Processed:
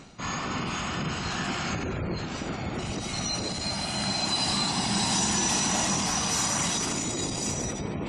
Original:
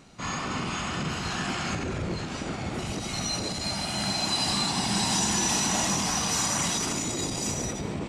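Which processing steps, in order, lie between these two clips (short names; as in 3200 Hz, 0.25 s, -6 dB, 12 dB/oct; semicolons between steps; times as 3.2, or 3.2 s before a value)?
spectral gate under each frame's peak -30 dB strong; reverse; upward compressor, threshold -31 dBFS; reverse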